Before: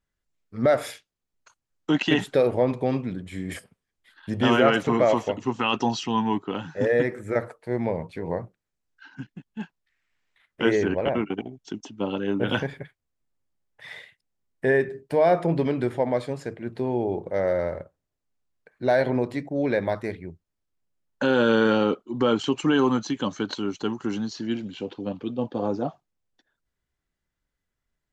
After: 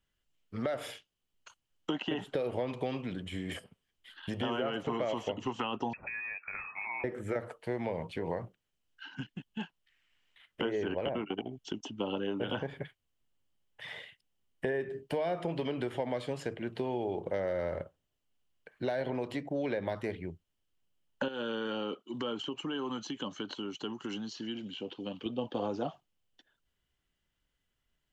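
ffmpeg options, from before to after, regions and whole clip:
ffmpeg -i in.wav -filter_complex "[0:a]asettb=1/sr,asplit=3[link_01][link_02][link_03];[link_01]atrim=end=5.934[link_04];[link_02]atrim=start=5.93:end=7.04,asetpts=PTS-STARTPTS,afade=type=in:duration=0.004:curve=qsin,afade=type=out:start_time=1.106:duration=0.004:curve=qsin,acompressor=threshold=-26dB:ratio=4:attack=3.2:release=140:knee=1:detection=peak,lowpass=frequency=2300:width_type=q:width=0.5098,lowpass=frequency=2300:width_type=q:width=0.6013,lowpass=frequency=2300:width_type=q:width=0.9,lowpass=frequency=2300:width_type=q:width=2.563,afreqshift=-2700[link_05];[link_03]atrim=start=7.036[link_06];[link_04][link_05]acrossfade=duration=0.004:curve1=hsin:curve2=qsin[link_07];[link_07][link_06]acrossfade=duration=0.004:curve1=qsin:curve2=hsin,asettb=1/sr,asplit=3[link_08][link_09][link_10];[link_08]atrim=end=21.284[link_11];[link_09]atrim=start=21.28:end=25.26,asetpts=PTS-STARTPTS,afade=type=in:duration=0.004:curve=qsin,afade=type=out:start_time=3.976:duration=0.004:curve=qsin,equalizer=frequency=670:width=0.59:gain=-6.5,acompressor=threshold=-28dB:ratio=2.5:attack=3.2:release=140:knee=1:detection=peak,highpass=frequency=340:poles=1[link_12];[link_10]atrim=start=25.256[link_13];[link_11][link_12]acrossfade=duration=0.004:curve1=hsin:curve2=qsin[link_14];[link_14][link_13]acrossfade=duration=0.004:curve1=qsin:curve2=hsin,acompressor=threshold=-26dB:ratio=2.5,equalizer=frequency=3000:width=4.5:gain=12.5,acrossover=split=430|1300[link_15][link_16][link_17];[link_15]acompressor=threshold=-37dB:ratio=4[link_18];[link_16]acompressor=threshold=-34dB:ratio=4[link_19];[link_17]acompressor=threshold=-45dB:ratio=4[link_20];[link_18][link_19][link_20]amix=inputs=3:normalize=0" out.wav

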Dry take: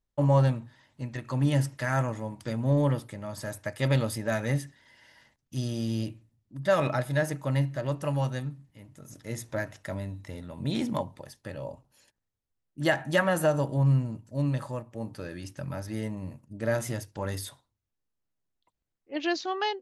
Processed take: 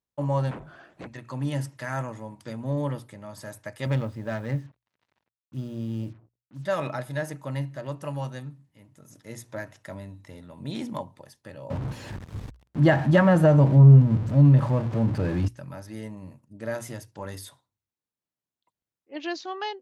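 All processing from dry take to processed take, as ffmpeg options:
ffmpeg -i in.wav -filter_complex "[0:a]asettb=1/sr,asplit=3[link_01][link_02][link_03];[link_01]atrim=end=0.514[link_04];[link_02]atrim=start=0.51:end=1.07,asetpts=PTS-STARTPTS,afade=type=in:duration=0.004:curve=qsin,afade=type=out:start_time=0.556:duration=0.004:curve=qsin,acrossover=split=260 2100:gain=0.178 1 0.178[link_05][link_06][link_07];[link_05][link_06][link_07]amix=inputs=3:normalize=0,afreqshift=-270,aeval=exprs='0.0299*sin(PI/2*5.01*val(0)/0.0299)':channel_layout=same[link_08];[link_03]atrim=start=1.066[link_09];[link_04][link_08]acrossfade=duration=0.004:curve1=hsin:curve2=qsin[link_10];[link_10][link_09]acrossfade=duration=0.004:curve1=qsin:curve2=hsin,asettb=1/sr,asplit=3[link_11][link_12][link_13];[link_11]atrim=end=3.864[link_14];[link_12]atrim=start=3.86:end=6.65,asetpts=PTS-STARTPTS,afade=type=in:duration=0.004:curve=qsin,afade=type=out:start_time=2.786:duration=0.004:curve=qsin,lowshelf=frequency=120:gain=9.5,adynamicsmooth=sensitivity=3.5:basefreq=1200,acrusher=bits=8:mix=0:aa=0.5[link_15];[link_13]atrim=start=6.646[link_16];[link_14][link_15]acrossfade=duration=0.004:curve1=hsin:curve2=qsin[link_17];[link_17][link_16]acrossfade=duration=0.004:curve1=qsin:curve2=hsin,asettb=1/sr,asplit=3[link_18][link_19][link_20];[link_18]atrim=end=11.704[link_21];[link_19]atrim=start=11.7:end=15.48,asetpts=PTS-STARTPTS,afade=type=in:duration=0.004:curve=qsin,afade=type=out:start_time=3.776:duration=0.004:curve=qsin,aeval=exprs='val(0)+0.5*0.0168*sgn(val(0))':channel_layout=same,aemphasis=mode=reproduction:type=riaa,acontrast=55[link_22];[link_20]atrim=start=15.476[link_23];[link_21][link_22]acrossfade=duration=0.004:curve1=hsin:curve2=qsin[link_24];[link_24][link_23]acrossfade=duration=0.004:curve1=qsin:curve2=hsin,highpass=86,equalizer=frequency=990:width=3.8:gain=2.5,bandreject=frequency=60:width_type=h:width=6,bandreject=frequency=120:width_type=h:width=6,volume=-3.5dB" out.wav

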